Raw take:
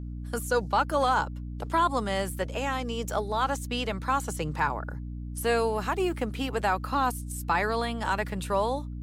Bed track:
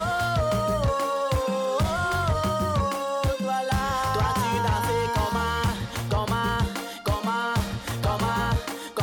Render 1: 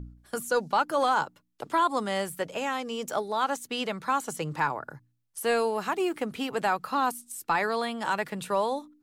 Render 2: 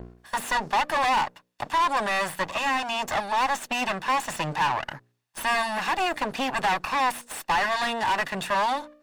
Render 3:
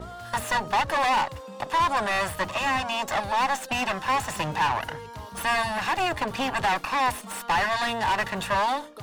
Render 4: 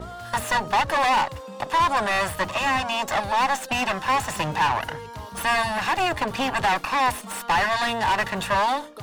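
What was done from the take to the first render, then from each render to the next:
hum removal 60 Hz, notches 5
lower of the sound and its delayed copy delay 1.1 ms; mid-hump overdrive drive 21 dB, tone 2,800 Hz, clips at −15.5 dBFS
mix in bed track −15 dB
level +2.5 dB

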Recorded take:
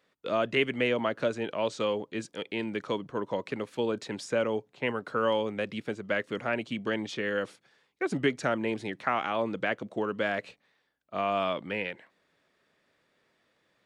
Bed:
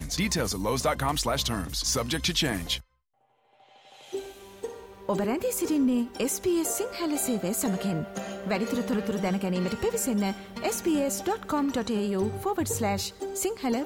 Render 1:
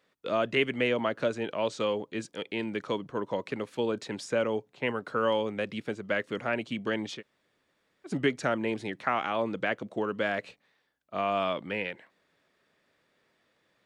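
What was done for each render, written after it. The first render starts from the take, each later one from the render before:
0:07.18–0:08.09: fill with room tone, crossfade 0.10 s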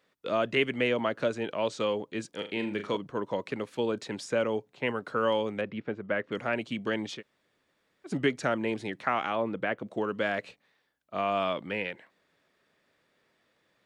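0:02.33–0:02.97: flutter between parallel walls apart 6.7 metres, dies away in 0.3 s
0:05.61–0:06.32: low-pass filter 2,100 Hz
0:09.35–0:09.86: parametric band 6,100 Hz −13 dB 1.4 octaves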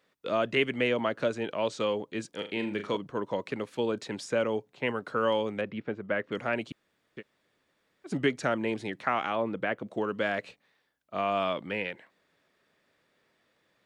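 0:06.72–0:07.17: fill with room tone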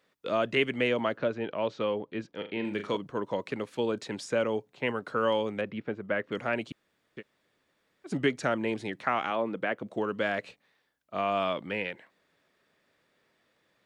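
0:01.17–0:02.65: high-frequency loss of the air 220 metres
0:09.30–0:09.81: high-pass filter 160 Hz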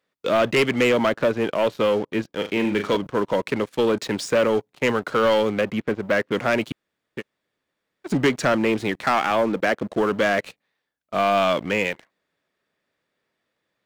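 leveller curve on the samples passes 3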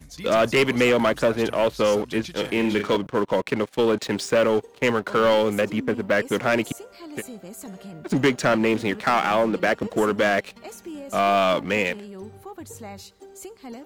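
mix in bed −11 dB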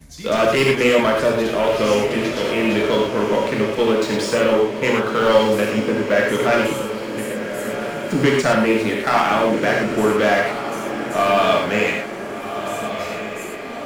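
feedback delay with all-pass diffusion 1,394 ms, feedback 55%, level −9 dB
reverb whose tail is shaped and stops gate 140 ms flat, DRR −1.5 dB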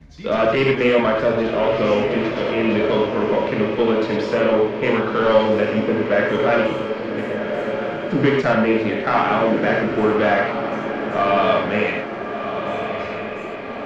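high-frequency loss of the air 230 metres
feedback delay with all-pass diffusion 1,166 ms, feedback 47%, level −11 dB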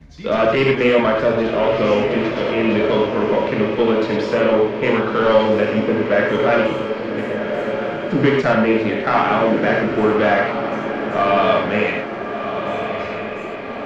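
level +1.5 dB
brickwall limiter −3 dBFS, peak gain reduction 1 dB

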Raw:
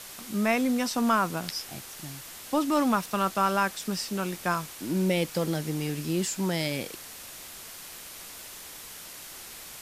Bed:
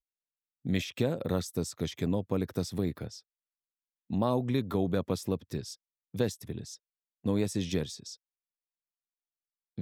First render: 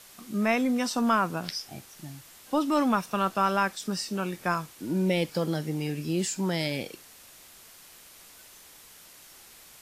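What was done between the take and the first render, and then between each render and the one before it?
noise reduction from a noise print 8 dB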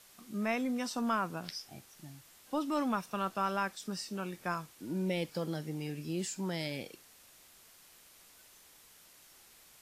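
level −8 dB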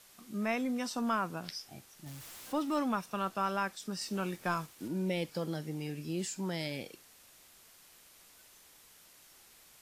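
0:02.06–0:02.79: converter with a step at zero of −46 dBFS
0:04.01–0:04.88: leveller curve on the samples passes 1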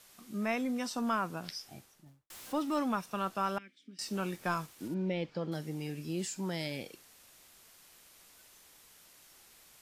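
0:01.70–0:02.30: fade out and dull
0:03.58–0:03.99: formant filter i
0:04.94–0:05.52: high-frequency loss of the air 190 metres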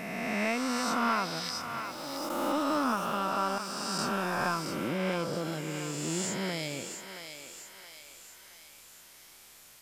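peak hold with a rise ahead of every peak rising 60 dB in 2.30 s
feedback echo with a high-pass in the loop 672 ms, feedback 53%, high-pass 700 Hz, level −7 dB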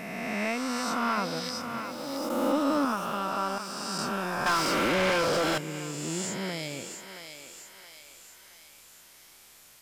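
0:01.17–0:02.85: hollow resonant body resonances 240/500 Hz, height 10 dB
0:04.46–0:05.58: mid-hump overdrive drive 26 dB, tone 4,200 Hz, clips at −18 dBFS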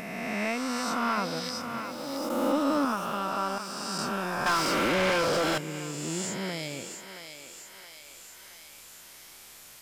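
upward compression, threshold −42 dBFS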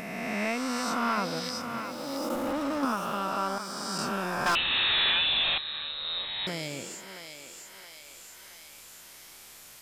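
0:02.35–0:02.83: tube saturation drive 26 dB, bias 0.55
0:03.47–0:03.96: Butterworth band-reject 2,700 Hz, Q 7
0:04.55–0:06.47: voice inversion scrambler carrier 4,000 Hz

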